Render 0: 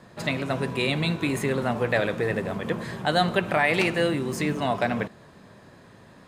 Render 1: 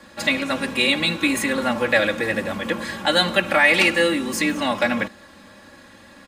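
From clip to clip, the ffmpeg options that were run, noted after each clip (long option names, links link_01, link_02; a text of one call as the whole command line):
ffmpeg -i in.wav -filter_complex "[0:a]acrossover=split=170|1300[link_01][link_02][link_03];[link_03]acontrast=79[link_04];[link_01][link_02][link_04]amix=inputs=3:normalize=0,aecho=1:1:3.6:0.94" out.wav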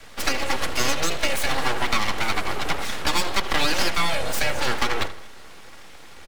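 ffmpeg -i in.wav -filter_complex "[0:a]aeval=exprs='abs(val(0))':channel_layout=same,acrossover=split=130|300|1500[link_01][link_02][link_03][link_04];[link_01]acompressor=threshold=-26dB:ratio=4[link_05];[link_02]acompressor=threshold=-44dB:ratio=4[link_06];[link_03]acompressor=threshold=-29dB:ratio=4[link_07];[link_04]acompressor=threshold=-28dB:ratio=4[link_08];[link_05][link_06][link_07][link_08]amix=inputs=4:normalize=0,asplit=2[link_09][link_10];[link_10]adelay=80,lowpass=frequency=3300:poles=1,volume=-14dB,asplit=2[link_11][link_12];[link_12]adelay=80,lowpass=frequency=3300:poles=1,volume=0.51,asplit=2[link_13][link_14];[link_14]adelay=80,lowpass=frequency=3300:poles=1,volume=0.51,asplit=2[link_15][link_16];[link_16]adelay=80,lowpass=frequency=3300:poles=1,volume=0.51,asplit=2[link_17][link_18];[link_18]adelay=80,lowpass=frequency=3300:poles=1,volume=0.51[link_19];[link_09][link_11][link_13][link_15][link_17][link_19]amix=inputs=6:normalize=0,volume=3.5dB" out.wav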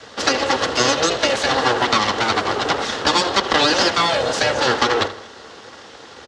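ffmpeg -i in.wav -af "highpass=110,equalizer=frequency=160:width_type=q:width=4:gain=-7,equalizer=frequency=460:width_type=q:width=4:gain=5,equalizer=frequency=2300:width_type=q:width=4:gain=-9,lowpass=frequency=6500:width=0.5412,lowpass=frequency=6500:width=1.3066,volume=8dB" out.wav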